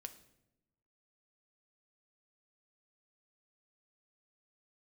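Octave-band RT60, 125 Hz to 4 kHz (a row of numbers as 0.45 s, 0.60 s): 1.3 s, 1.2 s, 1.0 s, 0.75 s, 0.70 s, 0.60 s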